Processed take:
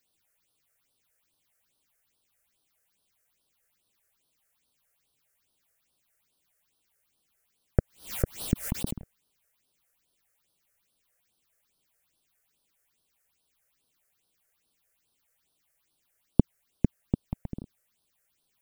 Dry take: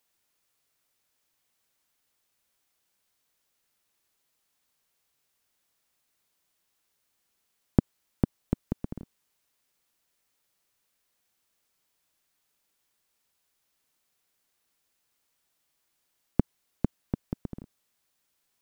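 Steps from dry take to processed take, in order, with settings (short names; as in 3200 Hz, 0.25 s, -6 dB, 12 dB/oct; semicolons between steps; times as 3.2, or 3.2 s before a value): phaser stages 6, 2.4 Hz, lowest notch 240–2100 Hz; 7.79–8.97 backwards sustainer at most 150 dB/s; gain +3 dB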